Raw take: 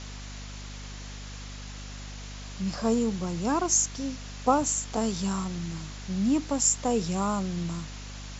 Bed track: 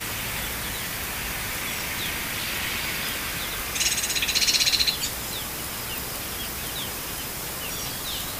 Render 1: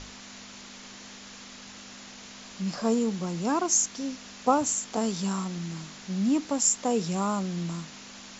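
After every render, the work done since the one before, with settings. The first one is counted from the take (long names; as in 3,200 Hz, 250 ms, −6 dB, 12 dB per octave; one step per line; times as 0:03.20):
mains-hum notches 50/100/150 Hz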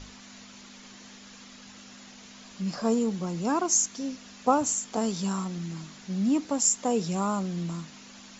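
broadband denoise 6 dB, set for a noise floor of −46 dBFS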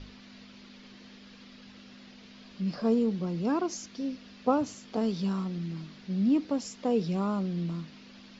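drawn EQ curve 490 Hz 0 dB, 830 Hz −7 dB, 2,600 Hz −3 dB, 4,800 Hz −4 dB, 7,900 Hz −27 dB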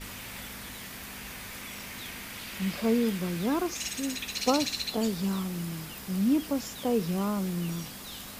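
mix in bed track −12 dB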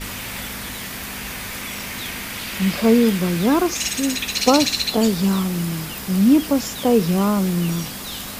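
level +11 dB
brickwall limiter −1 dBFS, peak gain reduction 2 dB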